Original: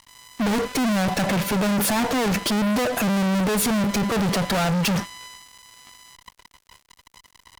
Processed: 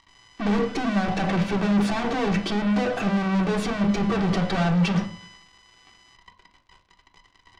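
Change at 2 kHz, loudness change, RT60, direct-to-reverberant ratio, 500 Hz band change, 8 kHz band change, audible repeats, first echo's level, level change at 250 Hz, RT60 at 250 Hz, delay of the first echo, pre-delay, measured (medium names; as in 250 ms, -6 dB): -3.0 dB, -1.5 dB, 0.45 s, 2.0 dB, -2.0 dB, -14.5 dB, no echo, no echo, -0.5 dB, 0.60 s, no echo, 3 ms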